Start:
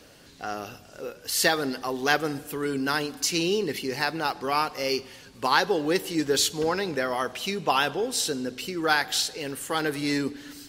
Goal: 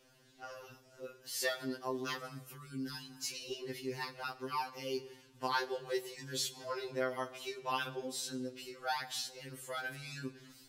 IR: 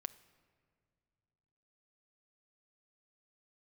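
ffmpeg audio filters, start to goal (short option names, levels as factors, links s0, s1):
-filter_complex "[1:a]atrim=start_sample=2205,afade=t=out:st=0.3:d=0.01,atrim=end_sample=13671[s0];[0:a][s0]afir=irnorm=-1:irlink=0,asettb=1/sr,asplit=3[s1][s2][s3];[s1]atrim=end=2.424[s4];[s2]atrim=start=2.42:end=3.51,asetpts=PTS-STARTPTS,afade=t=in:d=0.004:c=qsin,afade=t=out:st=1.086:d=0.004:c=qsin,acrossover=split=310|3000[s5][s6][s7];[s6]acompressor=threshold=0.01:ratio=6[s8];[s5][s8][s7]amix=inputs=3:normalize=0[s9];[s3]atrim=start=3.506[s10];[s4][s9]acrossfade=d=0.004:c1=hsin:c2=qsin[s11];[s11][s10]acrossfade=d=0.004:c1=qsin:c2=hsin,afftfilt=real='re*2.45*eq(mod(b,6),0)':imag='im*2.45*eq(mod(b,6),0)':win_size=2048:overlap=0.75,volume=0.398"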